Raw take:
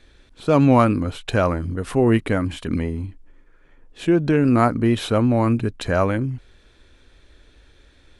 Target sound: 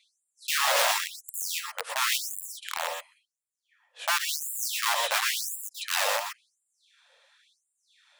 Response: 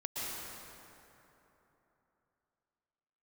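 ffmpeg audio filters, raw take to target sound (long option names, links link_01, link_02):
-filter_complex "[0:a]aeval=exprs='(mod(5.62*val(0)+1,2)-1)/5.62':channel_layout=same[link_01];[1:a]atrim=start_sample=2205,afade=type=out:start_time=0.18:duration=0.01,atrim=end_sample=8379[link_02];[link_01][link_02]afir=irnorm=-1:irlink=0,afftfilt=real='re*gte(b*sr/1024,440*pow(7200/440,0.5+0.5*sin(2*PI*0.94*pts/sr)))':imag='im*gte(b*sr/1024,440*pow(7200/440,0.5+0.5*sin(2*PI*0.94*pts/sr)))':win_size=1024:overlap=0.75"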